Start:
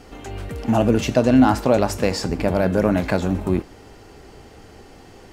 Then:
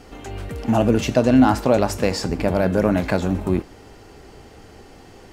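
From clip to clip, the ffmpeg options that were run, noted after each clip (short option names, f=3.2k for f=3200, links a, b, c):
-af anull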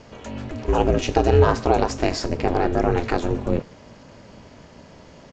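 -af "aresample=16000,aresample=44100,aeval=exprs='val(0)*sin(2*PI*170*n/s)':c=same,volume=1.5dB"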